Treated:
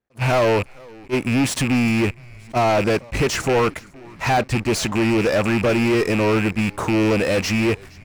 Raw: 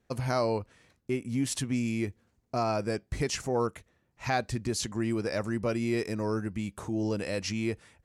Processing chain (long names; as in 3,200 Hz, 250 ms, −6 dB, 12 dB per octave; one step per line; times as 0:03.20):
loose part that buzzes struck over −36 dBFS, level −27 dBFS
low-shelf EQ 380 Hz −8 dB
leveller curve on the samples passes 5
high-shelf EQ 2,600 Hz −10 dB
on a send: echo with shifted repeats 467 ms, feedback 59%, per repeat −120 Hz, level −24 dB
on the sum: level that may rise only so fast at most 480 dB per second
level +3.5 dB